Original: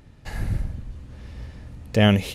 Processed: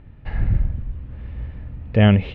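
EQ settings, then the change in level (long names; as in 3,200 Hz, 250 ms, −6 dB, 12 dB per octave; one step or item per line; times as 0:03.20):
low-pass filter 2,900 Hz 24 dB per octave
low-shelf EQ 140 Hz +8.5 dB
0.0 dB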